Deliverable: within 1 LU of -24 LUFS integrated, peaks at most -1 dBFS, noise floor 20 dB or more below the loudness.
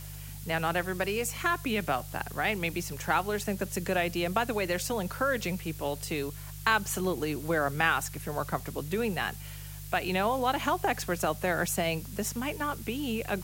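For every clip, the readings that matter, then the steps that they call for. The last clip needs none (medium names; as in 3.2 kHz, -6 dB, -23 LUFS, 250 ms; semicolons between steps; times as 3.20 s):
hum 50 Hz; highest harmonic 150 Hz; hum level -41 dBFS; noise floor -42 dBFS; noise floor target -51 dBFS; loudness -30.5 LUFS; peak level -10.5 dBFS; loudness target -24.0 LUFS
-> de-hum 50 Hz, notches 3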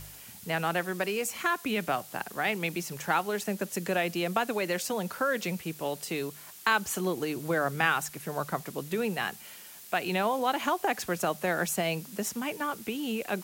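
hum not found; noise floor -48 dBFS; noise floor target -51 dBFS
-> noise reduction 6 dB, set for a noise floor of -48 dBFS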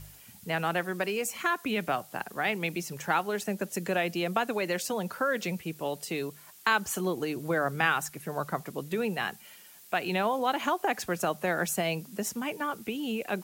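noise floor -53 dBFS; loudness -30.5 LUFS; peak level -11.0 dBFS; loudness target -24.0 LUFS
-> trim +6.5 dB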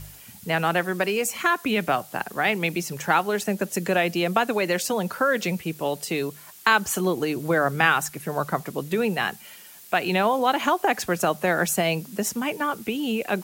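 loudness -24.0 LUFS; peak level -4.5 dBFS; noise floor -46 dBFS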